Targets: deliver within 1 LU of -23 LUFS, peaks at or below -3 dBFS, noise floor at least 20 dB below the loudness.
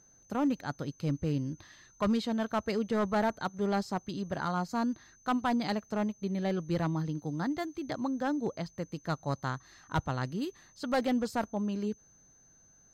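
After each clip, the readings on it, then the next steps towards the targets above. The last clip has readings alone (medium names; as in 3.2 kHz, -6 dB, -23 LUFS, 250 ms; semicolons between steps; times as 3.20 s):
clipped samples 1.0%; clipping level -22.5 dBFS; steady tone 6.2 kHz; tone level -60 dBFS; loudness -33.0 LUFS; peak level -22.5 dBFS; loudness target -23.0 LUFS
-> clip repair -22.5 dBFS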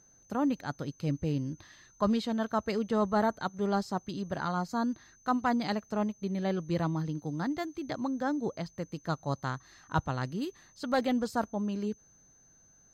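clipped samples 0.0%; steady tone 6.2 kHz; tone level -60 dBFS
-> band-stop 6.2 kHz, Q 30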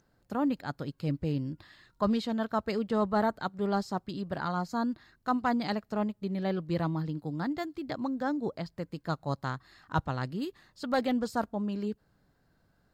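steady tone not found; loudness -32.5 LUFS; peak level -15.0 dBFS; loudness target -23.0 LUFS
-> trim +9.5 dB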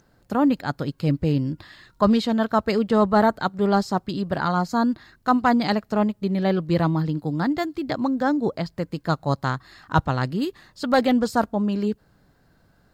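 loudness -23.0 LUFS; peak level -5.5 dBFS; noise floor -61 dBFS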